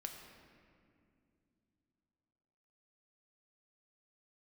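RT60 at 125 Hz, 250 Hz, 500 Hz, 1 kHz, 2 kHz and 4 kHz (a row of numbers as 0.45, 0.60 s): 3.8, 3.7, 2.9, 2.1, 2.0, 1.4 s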